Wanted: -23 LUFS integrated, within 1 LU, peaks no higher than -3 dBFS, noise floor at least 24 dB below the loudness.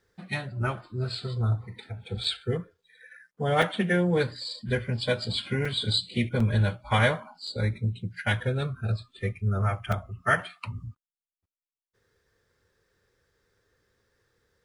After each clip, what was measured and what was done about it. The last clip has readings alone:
dropouts 6; longest dropout 4.0 ms; loudness -28.5 LUFS; peak -9.0 dBFS; loudness target -23.0 LUFS
-> interpolate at 2.24/3.62/5.65/6.4/7.47/9.92, 4 ms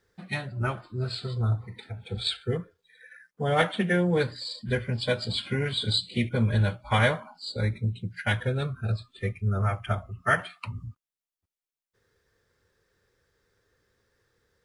dropouts 0; loudness -28.5 LUFS; peak -9.0 dBFS; loudness target -23.0 LUFS
-> gain +5.5 dB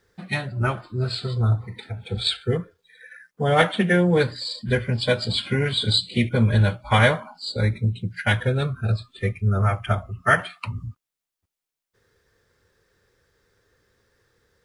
loudness -23.0 LUFS; peak -3.5 dBFS; noise floor -87 dBFS

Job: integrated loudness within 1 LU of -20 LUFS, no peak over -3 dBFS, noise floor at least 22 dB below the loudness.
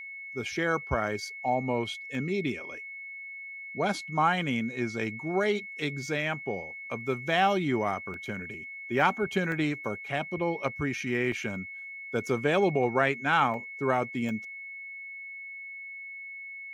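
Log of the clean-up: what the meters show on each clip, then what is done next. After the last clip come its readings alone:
dropouts 6; longest dropout 1.2 ms; steady tone 2200 Hz; tone level -39 dBFS; loudness -30.0 LUFS; peak -10.0 dBFS; loudness target -20.0 LUFS
-> interpolate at 2.15/8.14/9.52/11.32/13.54/14.29, 1.2 ms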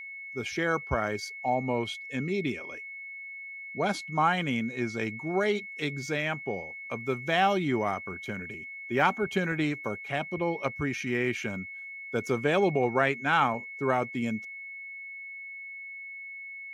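dropouts 0; steady tone 2200 Hz; tone level -39 dBFS
-> notch 2200 Hz, Q 30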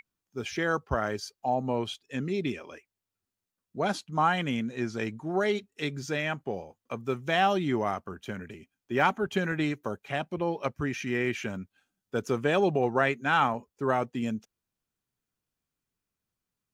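steady tone none; loudness -29.5 LUFS; peak -10.5 dBFS; loudness target -20.0 LUFS
-> gain +9.5 dB; limiter -3 dBFS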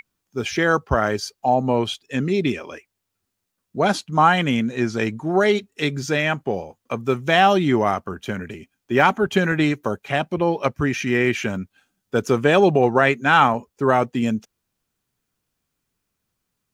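loudness -20.5 LUFS; peak -3.0 dBFS; noise floor -79 dBFS

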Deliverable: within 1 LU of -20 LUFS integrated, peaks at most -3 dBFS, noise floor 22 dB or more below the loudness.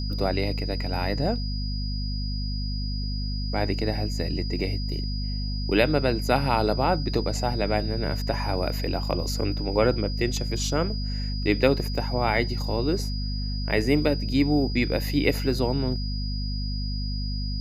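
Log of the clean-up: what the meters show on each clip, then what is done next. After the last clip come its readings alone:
hum 50 Hz; harmonics up to 250 Hz; hum level -26 dBFS; steady tone 4900 Hz; tone level -36 dBFS; loudness -26.5 LUFS; peak -5.5 dBFS; loudness target -20.0 LUFS
-> notches 50/100/150/200/250 Hz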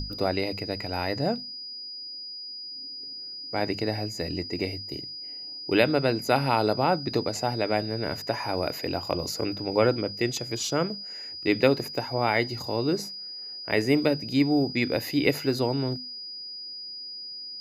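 hum none; steady tone 4900 Hz; tone level -36 dBFS
-> notch 4900 Hz, Q 30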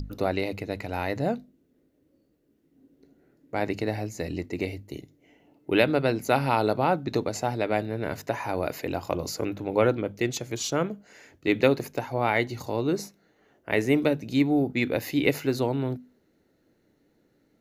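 steady tone none; loudness -27.0 LUFS; peak -5.5 dBFS; loudness target -20.0 LUFS
-> gain +7 dB; limiter -3 dBFS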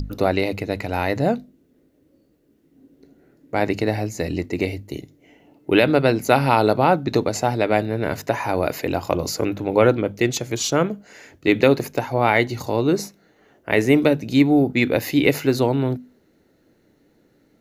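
loudness -20.5 LUFS; peak -3.0 dBFS; noise floor -61 dBFS

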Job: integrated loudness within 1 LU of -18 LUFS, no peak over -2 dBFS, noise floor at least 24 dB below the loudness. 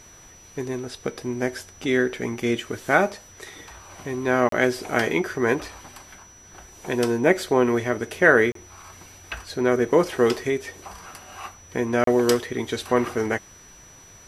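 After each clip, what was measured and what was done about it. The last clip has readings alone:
dropouts 3; longest dropout 33 ms; steady tone 5900 Hz; tone level -48 dBFS; loudness -23.0 LUFS; peak -2.5 dBFS; loudness target -18.0 LUFS
-> interpolate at 4.49/8.52/12.04, 33 ms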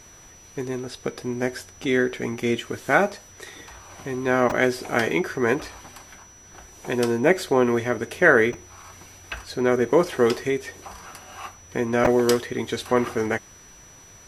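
dropouts 0; steady tone 5900 Hz; tone level -48 dBFS
-> notch 5900 Hz, Q 30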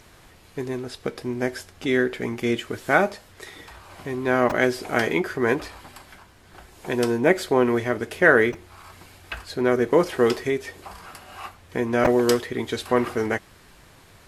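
steady tone none; loudness -23.0 LUFS; peak -2.5 dBFS; loudness target -18.0 LUFS
-> gain +5 dB; limiter -2 dBFS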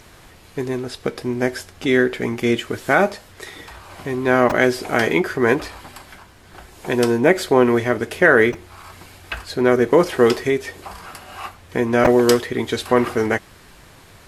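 loudness -18.5 LUFS; peak -2.0 dBFS; noise floor -47 dBFS

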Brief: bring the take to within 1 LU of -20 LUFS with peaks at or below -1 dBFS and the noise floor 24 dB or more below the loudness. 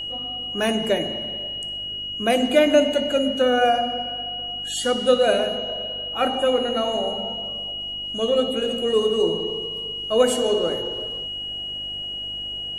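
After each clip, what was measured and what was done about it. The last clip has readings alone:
hum 50 Hz; harmonics up to 350 Hz; hum level -46 dBFS; steady tone 2900 Hz; tone level -28 dBFS; loudness -22.5 LUFS; peak -4.0 dBFS; loudness target -20.0 LUFS
-> de-hum 50 Hz, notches 7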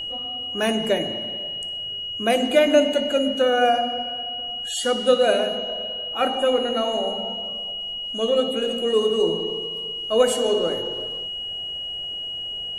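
hum none; steady tone 2900 Hz; tone level -28 dBFS
-> notch 2900 Hz, Q 30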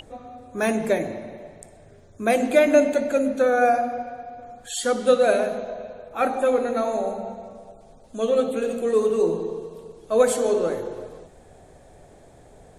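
steady tone none; loudness -22.5 LUFS; peak -4.5 dBFS; loudness target -20.0 LUFS
-> gain +2.5 dB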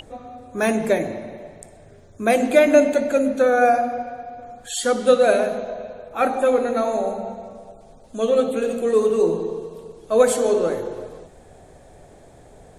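loudness -20.0 LUFS; peak -2.0 dBFS; noise floor -48 dBFS

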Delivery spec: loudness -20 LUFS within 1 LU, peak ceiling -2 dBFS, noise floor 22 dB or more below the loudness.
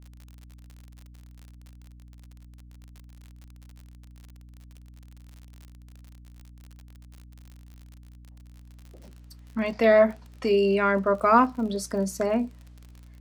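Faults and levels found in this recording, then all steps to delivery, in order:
ticks 51/s; hum 60 Hz; harmonics up to 300 Hz; hum level -46 dBFS; loudness -23.5 LUFS; peak -6.0 dBFS; loudness target -20.0 LUFS
-> de-click; de-hum 60 Hz, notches 5; gain +3.5 dB

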